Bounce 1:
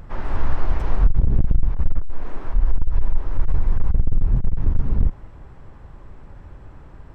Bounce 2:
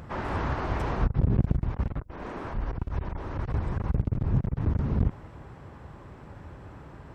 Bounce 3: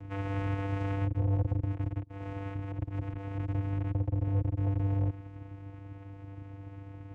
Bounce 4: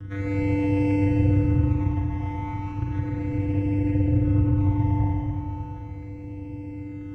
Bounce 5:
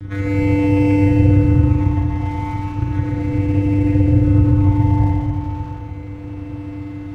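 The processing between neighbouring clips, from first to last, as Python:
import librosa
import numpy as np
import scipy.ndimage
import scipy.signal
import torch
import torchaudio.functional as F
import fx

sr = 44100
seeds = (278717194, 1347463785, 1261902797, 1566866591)

y1 = scipy.signal.sosfilt(scipy.signal.butter(2, 87.0, 'highpass', fs=sr, output='sos'), x)
y1 = y1 * 10.0 ** (2.0 / 20.0)
y2 = fx.vocoder(y1, sr, bands=4, carrier='square', carrier_hz=98.5)
y2 = 10.0 ** (-25.5 / 20.0) * np.tanh(y2 / 10.0 ** (-25.5 / 20.0))
y2 = y2 * 10.0 ** (3.5 / 20.0)
y3 = fx.phaser_stages(y2, sr, stages=12, low_hz=430.0, high_hz=1300.0, hz=0.35, feedback_pct=25)
y3 = fx.rev_schroeder(y3, sr, rt60_s=3.1, comb_ms=33, drr_db=-4.0)
y3 = y3 * 10.0 ** (7.0 / 20.0)
y4 = np.sign(y3) * np.maximum(np.abs(y3) - 10.0 ** (-48.0 / 20.0), 0.0)
y4 = y4 * 10.0 ** (8.0 / 20.0)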